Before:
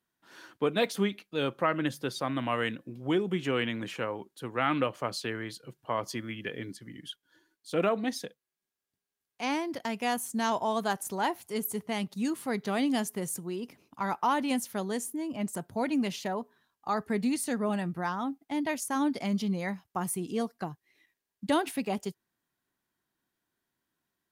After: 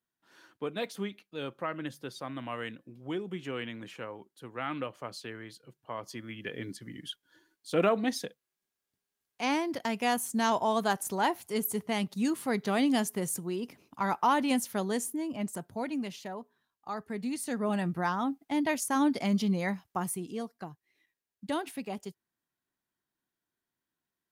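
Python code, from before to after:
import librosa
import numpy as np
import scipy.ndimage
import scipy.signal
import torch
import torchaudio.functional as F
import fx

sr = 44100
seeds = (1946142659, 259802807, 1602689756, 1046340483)

y = fx.gain(x, sr, db=fx.line((6.03, -7.5), (6.76, 1.5), (15.07, 1.5), (16.16, -7.0), (17.17, -7.0), (17.87, 2.0), (19.84, 2.0), (20.41, -6.0)))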